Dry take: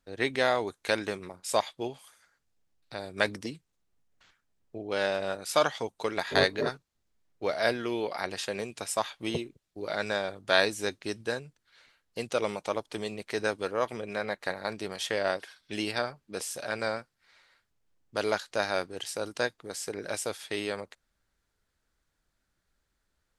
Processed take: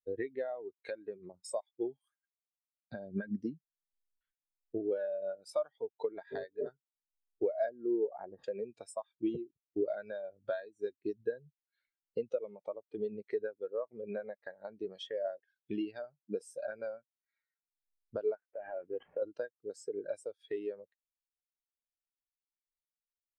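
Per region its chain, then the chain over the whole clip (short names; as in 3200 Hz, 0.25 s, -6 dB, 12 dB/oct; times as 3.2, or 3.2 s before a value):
1.9–3.36 expander -60 dBFS + compressor 4:1, threshold -31 dBFS + small resonant body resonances 220/1600 Hz, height 8 dB, ringing for 65 ms
7.69–8.44 median filter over 15 samples + tape spacing loss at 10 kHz 27 dB
18.35–19.22 CVSD 16 kbps + low shelf 460 Hz -3.5 dB + compressor 10:1, threshold -33 dBFS
whole clip: compressor 16:1, threshold -41 dBFS; spectral expander 2.5:1; gain +2.5 dB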